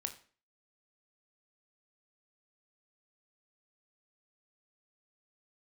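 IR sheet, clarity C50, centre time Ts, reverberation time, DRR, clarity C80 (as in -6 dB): 12.5 dB, 10 ms, 0.40 s, 6.0 dB, 16.5 dB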